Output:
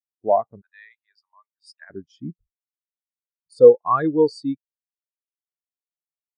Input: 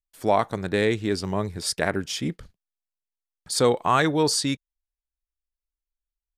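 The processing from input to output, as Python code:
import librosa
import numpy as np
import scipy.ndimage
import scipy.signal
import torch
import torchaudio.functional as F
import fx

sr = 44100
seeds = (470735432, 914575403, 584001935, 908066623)

y = fx.highpass(x, sr, hz=910.0, slope=24, at=(0.61, 1.9))
y = fx.spectral_expand(y, sr, expansion=2.5)
y = y * librosa.db_to_amplitude(7.0)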